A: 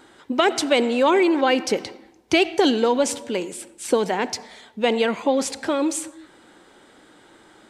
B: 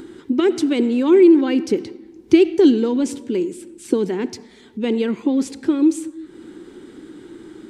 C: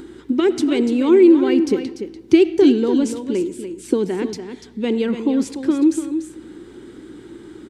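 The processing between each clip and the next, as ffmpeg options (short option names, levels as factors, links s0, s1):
-af "acompressor=mode=upward:threshold=0.0224:ratio=2.5,lowshelf=f=470:t=q:w=3:g=9.5,volume=0.447"
-af "aeval=exprs='val(0)+0.00251*(sin(2*PI*60*n/s)+sin(2*PI*2*60*n/s)/2+sin(2*PI*3*60*n/s)/3+sin(2*PI*4*60*n/s)/4+sin(2*PI*5*60*n/s)/5)':c=same,aecho=1:1:292:0.335"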